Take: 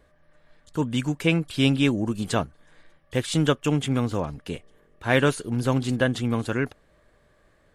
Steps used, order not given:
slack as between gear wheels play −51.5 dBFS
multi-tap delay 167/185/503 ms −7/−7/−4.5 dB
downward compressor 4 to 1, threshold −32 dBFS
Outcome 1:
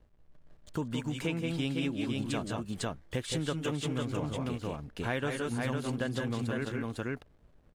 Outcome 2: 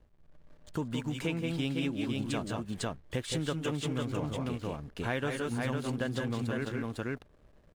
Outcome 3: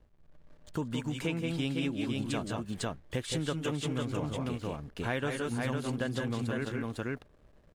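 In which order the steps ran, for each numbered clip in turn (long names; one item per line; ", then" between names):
slack as between gear wheels, then multi-tap delay, then downward compressor
multi-tap delay, then downward compressor, then slack as between gear wheels
multi-tap delay, then slack as between gear wheels, then downward compressor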